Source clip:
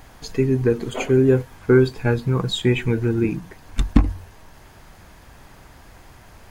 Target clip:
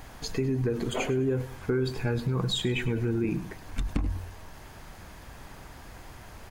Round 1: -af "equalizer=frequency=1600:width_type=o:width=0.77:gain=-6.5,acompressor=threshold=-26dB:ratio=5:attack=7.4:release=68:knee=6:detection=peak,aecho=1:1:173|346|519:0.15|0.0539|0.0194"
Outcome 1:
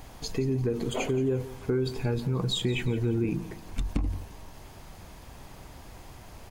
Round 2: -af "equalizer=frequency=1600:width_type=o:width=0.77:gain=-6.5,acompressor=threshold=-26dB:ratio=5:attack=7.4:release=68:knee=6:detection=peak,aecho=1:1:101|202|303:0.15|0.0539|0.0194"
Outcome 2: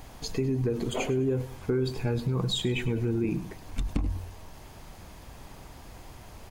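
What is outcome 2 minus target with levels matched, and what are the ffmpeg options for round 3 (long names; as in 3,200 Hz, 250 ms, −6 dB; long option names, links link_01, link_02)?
2,000 Hz band −3.0 dB
-af "acompressor=threshold=-26dB:ratio=5:attack=7.4:release=68:knee=6:detection=peak,aecho=1:1:101|202|303:0.15|0.0539|0.0194"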